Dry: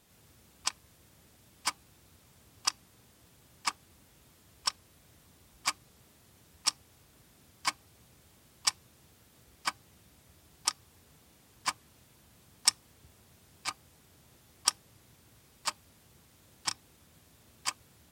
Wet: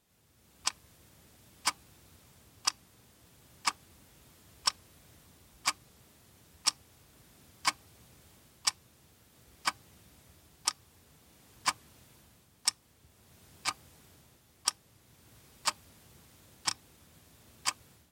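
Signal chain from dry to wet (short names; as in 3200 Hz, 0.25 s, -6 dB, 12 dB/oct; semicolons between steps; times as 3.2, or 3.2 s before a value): AGC gain up to 11 dB; gain -8 dB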